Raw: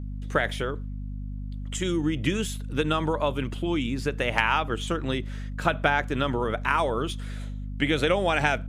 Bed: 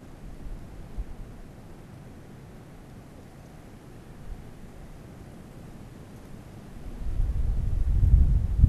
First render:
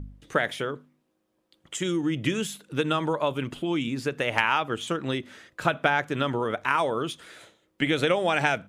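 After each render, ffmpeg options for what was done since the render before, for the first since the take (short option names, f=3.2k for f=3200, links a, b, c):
-af "bandreject=f=50:t=h:w=4,bandreject=f=100:t=h:w=4,bandreject=f=150:t=h:w=4,bandreject=f=200:t=h:w=4,bandreject=f=250:t=h:w=4"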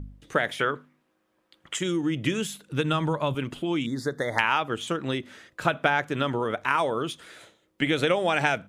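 -filter_complex "[0:a]asettb=1/sr,asplit=3[a][b][c];[a]atrim=end=0.594[d];[b]atrim=start=0.59:end=1.79,asetpts=PTS-STARTPTS,afade=t=in:d=0.004:c=qsin,afade=t=out:st=1.196:d=0.004:c=qsin,equalizer=f=1.6k:w=0.68:g=9.5[e];[c]atrim=start=1.786[f];[d][e]acrossfade=d=0.004:c1=hsin:c2=qsin[g];[g][f]acrossfade=d=0.004:c1=qsin:c2=hsin,asettb=1/sr,asplit=3[h][i][j];[h]atrim=end=2.434[k];[i]atrim=start=2.43:end=3.35,asetpts=PTS-STARTPTS,afade=t=in:d=0.004:c=qsin,afade=t=out:st=0.916:d=0.004:c=qsin,asubboost=boost=11:cutoff=200[l];[j]atrim=start=3.346[m];[k][l]acrossfade=d=0.004:c1=hsin:c2=qsin[n];[n][m]acrossfade=d=0.004:c1=qsin:c2=hsin,asettb=1/sr,asplit=3[o][p][q];[o]atrim=end=3.864[r];[p]atrim=start=3.86:end=4.39,asetpts=PTS-STARTPTS,afade=t=in:d=0.004:c=qsin,afade=t=out:st=0.526:d=0.004:c=qsin,asuperstop=centerf=2700:order=12:qfactor=1.9[s];[q]atrim=start=4.386[t];[r][s]acrossfade=d=0.004:c1=hsin:c2=qsin[u];[u][t]acrossfade=d=0.004:c1=qsin:c2=hsin"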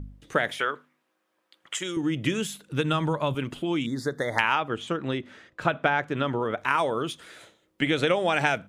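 -filter_complex "[0:a]asettb=1/sr,asplit=3[a][b][c];[a]atrim=end=0.594[d];[b]atrim=start=0.59:end=1.97,asetpts=PTS-STARTPTS,afade=t=in:d=0.004:c=qsin,afade=t=out:st=1.376:d=0.004:c=qsin,highpass=f=590:p=1[e];[c]atrim=start=1.966[f];[d][e]acrossfade=d=0.004:c1=hsin:c2=qsin[g];[g][f]acrossfade=d=0.004:c1=qsin:c2=hsin,asettb=1/sr,asplit=3[h][i][j];[h]atrim=end=4.554[k];[i]atrim=start=4.55:end=6.58,asetpts=PTS-STARTPTS,afade=t=in:d=0.004:c=qsin,afade=t=out:st=2.026:d=0.004:c=qsin,aemphasis=mode=reproduction:type=50kf[l];[j]atrim=start=6.576[m];[k][l]acrossfade=d=0.004:c1=hsin:c2=qsin[n];[n][m]acrossfade=d=0.004:c1=qsin:c2=hsin,asettb=1/sr,asplit=3[o][p][q];[o]atrim=end=7.864[r];[p]atrim=start=7.86:end=8.32,asetpts=PTS-STARTPTS,afade=t=in:d=0.004:c=qsin,afade=t=out:st=0.456:d=0.004:c=qsin,lowpass=9.9k[s];[q]atrim=start=8.316[t];[r][s]acrossfade=d=0.004:c1=hsin:c2=qsin[u];[u][t]acrossfade=d=0.004:c1=qsin:c2=hsin"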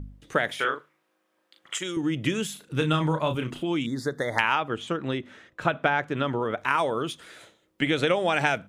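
-filter_complex "[0:a]asettb=1/sr,asplit=3[a][b][c];[a]atrim=end=0.554[d];[b]atrim=start=0.55:end=1.78,asetpts=PTS-STARTPTS,afade=t=in:d=0.004:c=qsin,afade=t=out:st=1.226:d=0.004:c=qsin,asplit=2[e][f];[f]adelay=38,volume=-4.5dB[g];[e][g]amix=inputs=2:normalize=0,atrim=end_sample=54243[h];[c]atrim=start=1.776[i];[d][h]acrossfade=d=0.004:c1=hsin:c2=qsin[j];[j][i]acrossfade=d=0.004:c1=qsin:c2=hsin,asettb=1/sr,asplit=3[k][l][m];[k]atrim=end=2.534[n];[l]atrim=start=2.53:end=3.63,asetpts=PTS-STARTPTS,afade=t=in:d=0.004:c=qsin,afade=t=out:st=1.096:d=0.004:c=qsin,asplit=2[o][p];[p]adelay=32,volume=-7dB[q];[o][q]amix=inputs=2:normalize=0,atrim=end_sample=48510[r];[m]atrim=start=3.626[s];[n][r]acrossfade=d=0.004:c1=hsin:c2=qsin[t];[t][s]acrossfade=d=0.004:c1=qsin:c2=hsin,asettb=1/sr,asplit=3[u][v][w];[u]atrim=end=5.174[x];[v]atrim=start=5.17:end=5.73,asetpts=PTS-STARTPTS,afade=t=in:d=0.004:c=qsin,afade=t=out:st=0.556:d=0.004:c=qsin,bandreject=f=4.7k:w=12[y];[w]atrim=start=5.726[z];[x][y]acrossfade=d=0.004:c1=hsin:c2=qsin[aa];[aa][z]acrossfade=d=0.004:c1=qsin:c2=hsin"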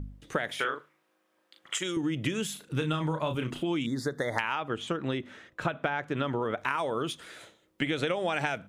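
-af "acompressor=threshold=-26dB:ratio=5"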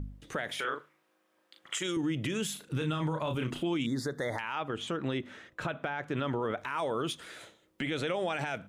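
-af "alimiter=limit=-23.5dB:level=0:latency=1:release=10"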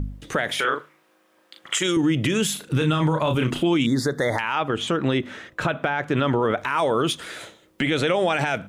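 -af "volume=11dB"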